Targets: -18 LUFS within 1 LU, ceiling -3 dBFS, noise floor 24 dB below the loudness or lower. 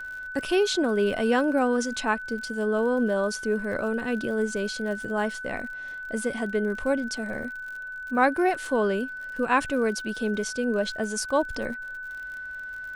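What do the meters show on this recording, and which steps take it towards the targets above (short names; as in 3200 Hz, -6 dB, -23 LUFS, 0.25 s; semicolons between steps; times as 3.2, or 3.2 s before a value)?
ticks 53/s; steady tone 1500 Hz; tone level -34 dBFS; loudness -27.0 LUFS; peak -8.5 dBFS; loudness target -18.0 LUFS
-> de-click; notch 1500 Hz, Q 30; gain +9 dB; limiter -3 dBFS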